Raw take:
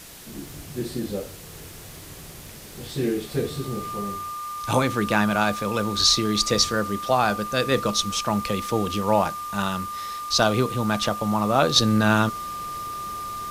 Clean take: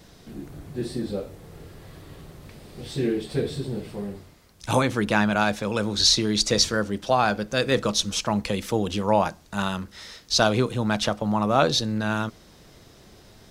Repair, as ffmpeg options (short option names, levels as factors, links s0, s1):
-af "bandreject=f=1200:w=30,afwtdn=0.0071,asetnsamples=n=441:p=0,asendcmd='11.76 volume volume -6.5dB',volume=1"